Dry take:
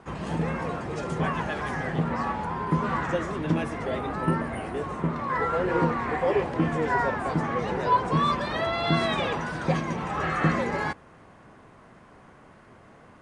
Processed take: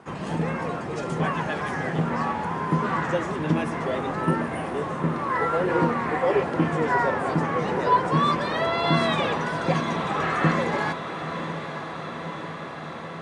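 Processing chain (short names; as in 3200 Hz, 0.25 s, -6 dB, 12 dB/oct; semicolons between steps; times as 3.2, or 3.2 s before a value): HPF 110 Hz 12 dB/oct; on a send: diffused feedback echo 0.923 s, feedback 75%, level -10.5 dB; on the sum: gain +2 dB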